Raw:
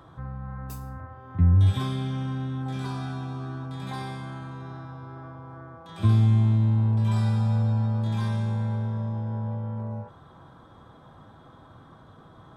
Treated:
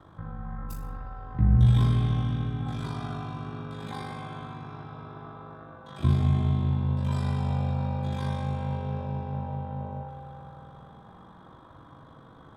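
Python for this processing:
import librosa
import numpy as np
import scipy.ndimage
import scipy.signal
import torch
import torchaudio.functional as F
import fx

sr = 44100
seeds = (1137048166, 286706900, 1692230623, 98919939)

y = x * np.sin(2.0 * np.pi * 25.0 * np.arange(len(x)) / sr)
y = fx.rev_spring(y, sr, rt60_s=3.8, pass_ms=(50,), chirp_ms=80, drr_db=0.5)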